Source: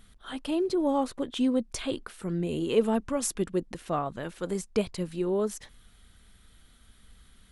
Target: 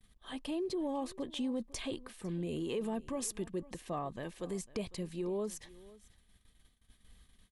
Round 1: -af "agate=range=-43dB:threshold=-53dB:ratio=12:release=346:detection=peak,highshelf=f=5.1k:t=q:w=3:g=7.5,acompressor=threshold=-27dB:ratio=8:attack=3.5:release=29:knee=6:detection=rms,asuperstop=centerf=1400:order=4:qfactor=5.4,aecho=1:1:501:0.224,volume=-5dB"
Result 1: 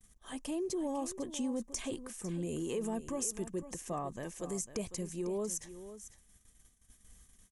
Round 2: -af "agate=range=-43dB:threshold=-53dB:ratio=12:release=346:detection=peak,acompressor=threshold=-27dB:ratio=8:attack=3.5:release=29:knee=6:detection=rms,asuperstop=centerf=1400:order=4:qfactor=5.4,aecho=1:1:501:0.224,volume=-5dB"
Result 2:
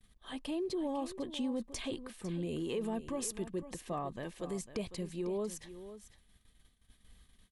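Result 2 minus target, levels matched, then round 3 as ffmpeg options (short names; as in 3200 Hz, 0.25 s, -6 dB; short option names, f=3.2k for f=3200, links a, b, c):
echo-to-direct +7.5 dB
-af "agate=range=-43dB:threshold=-53dB:ratio=12:release=346:detection=peak,acompressor=threshold=-27dB:ratio=8:attack=3.5:release=29:knee=6:detection=rms,asuperstop=centerf=1400:order=4:qfactor=5.4,aecho=1:1:501:0.0944,volume=-5dB"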